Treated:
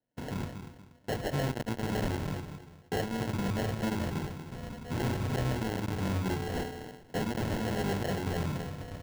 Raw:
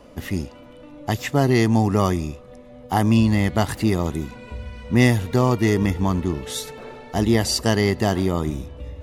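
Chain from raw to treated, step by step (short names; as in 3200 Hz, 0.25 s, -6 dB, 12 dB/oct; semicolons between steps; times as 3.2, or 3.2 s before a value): octaver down 1 oct, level -2 dB; dynamic EQ 280 Hz, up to -7 dB, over -34 dBFS, Q 2.2; in parallel at +0.5 dB: compressor, threshold -28 dBFS, peak gain reduction 16 dB; on the sum: gate -28 dBFS, range -37 dB; feedback echo 0.239 s, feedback 28%, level -11.5 dB; harmonic tremolo 7.5 Hz, depth 50%, crossover 640 Hz; flange 0.53 Hz, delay 8.9 ms, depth 3.2 ms, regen +75%; on a send at -4 dB: reverb RT60 0.45 s, pre-delay 4 ms; on the sum: hard clip -23 dBFS, distortion -6 dB; HPF 71 Hz 12 dB/oct; sample-rate reducer 1200 Hz, jitter 0%; high shelf 5900 Hz -4 dB; gain -4 dB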